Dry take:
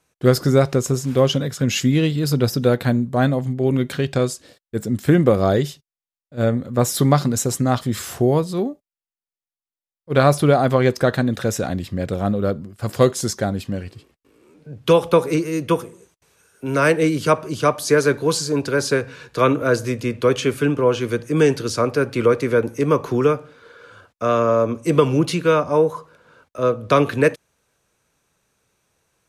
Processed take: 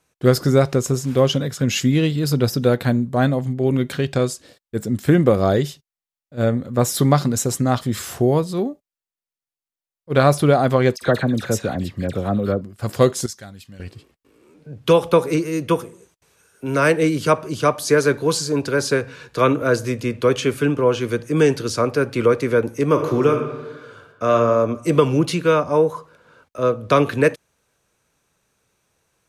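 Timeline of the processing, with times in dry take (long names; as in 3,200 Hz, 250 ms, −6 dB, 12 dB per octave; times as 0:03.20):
0:10.96–0:12.61: all-pass dispersion lows, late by 55 ms, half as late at 2,000 Hz
0:13.26–0:13.80: guitar amp tone stack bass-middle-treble 5-5-5
0:22.84–0:24.32: thrown reverb, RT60 1.2 s, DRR 4.5 dB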